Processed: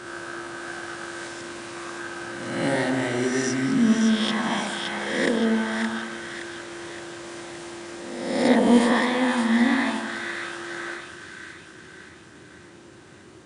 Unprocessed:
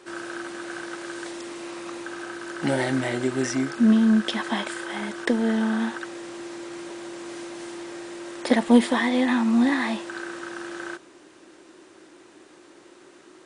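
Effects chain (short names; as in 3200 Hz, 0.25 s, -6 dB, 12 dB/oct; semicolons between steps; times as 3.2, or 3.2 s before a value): spectral swells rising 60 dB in 1.16 s; split-band echo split 1400 Hz, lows 98 ms, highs 0.569 s, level -4.5 dB; band noise 75–240 Hz -51 dBFS; gain -3 dB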